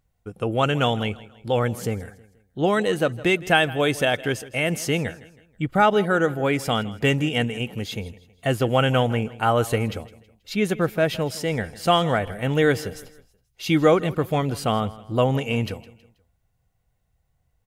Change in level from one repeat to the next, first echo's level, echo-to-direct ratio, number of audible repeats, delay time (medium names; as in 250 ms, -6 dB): -8.0 dB, -19.0 dB, -18.5 dB, 3, 161 ms